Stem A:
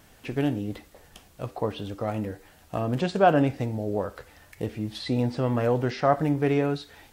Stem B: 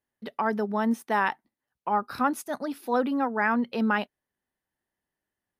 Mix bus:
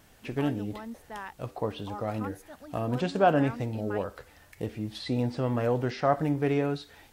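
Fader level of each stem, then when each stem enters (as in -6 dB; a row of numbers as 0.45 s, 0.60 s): -3.0 dB, -15.5 dB; 0.00 s, 0.00 s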